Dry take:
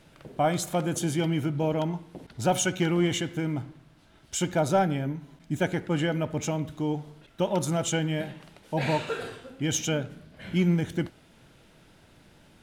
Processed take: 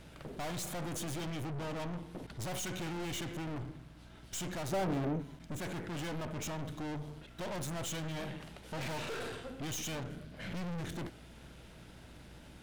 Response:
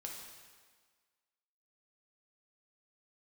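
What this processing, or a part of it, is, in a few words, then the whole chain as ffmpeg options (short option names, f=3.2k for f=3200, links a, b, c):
valve amplifier with mains hum: -filter_complex "[0:a]aeval=exprs='(tanh(112*val(0)+0.45)-tanh(0.45))/112':c=same,aeval=exprs='val(0)+0.00112*(sin(2*PI*60*n/s)+sin(2*PI*2*60*n/s)/2+sin(2*PI*3*60*n/s)/3+sin(2*PI*4*60*n/s)/4+sin(2*PI*5*60*n/s)/5)':c=same,asettb=1/sr,asplit=3[a][b][c];[a]atrim=end=4.724[d];[b]atrim=start=4.72:end=5.22,asetpts=PTS-STARTPTS,afade=t=in:d=0.004:c=qsin,afade=t=out:st=0.496:d=0.004:c=qsin,equalizer=f=400:t=o:w=2.5:g=9.5[e];[c]atrim=start=5.216[f];[d][e]acrossfade=d=0.004:c1=hsin:c2=qsin[g];[g][f]acrossfade=d=0.004:c1=qsin:c2=hsin,volume=3dB"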